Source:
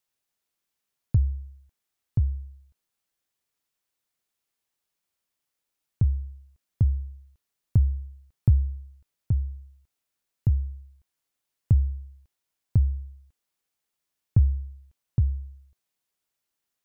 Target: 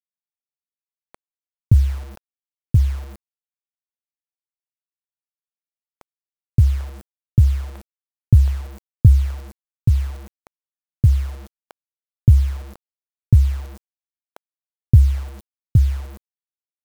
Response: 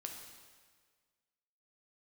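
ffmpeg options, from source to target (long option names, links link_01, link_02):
-filter_complex "[0:a]acrossover=split=640[link_01][link_02];[link_01]adelay=570[link_03];[link_03][link_02]amix=inputs=2:normalize=0,acrusher=bits=7:mix=0:aa=0.000001,volume=8.5dB"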